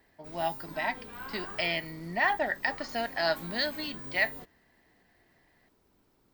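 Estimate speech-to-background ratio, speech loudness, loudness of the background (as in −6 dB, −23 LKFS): 10.5 dB, −31.5 LKFS, −42.0 LKFS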